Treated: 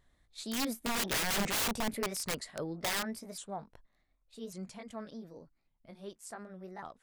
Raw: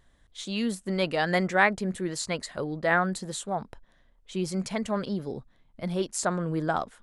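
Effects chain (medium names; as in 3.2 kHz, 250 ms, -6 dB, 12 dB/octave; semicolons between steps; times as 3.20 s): sawtooth pitch modulation +4 st, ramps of 1123 ms; Doppler pass-by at 1.45 s, 8 m/s, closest 5.8 m; integer overflow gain 26.5 dB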